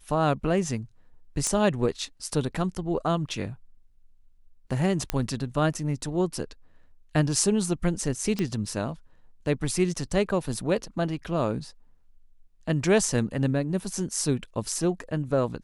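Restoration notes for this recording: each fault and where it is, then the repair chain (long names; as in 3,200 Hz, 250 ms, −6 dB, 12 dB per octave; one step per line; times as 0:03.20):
0:01.47: click −13 dBFS
0:05.10: click −10 dBFS
0:08.39: click −15 dBFS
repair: click removal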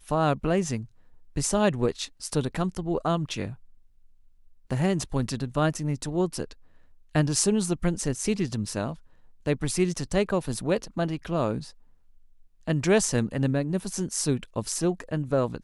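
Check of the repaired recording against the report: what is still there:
none of them is left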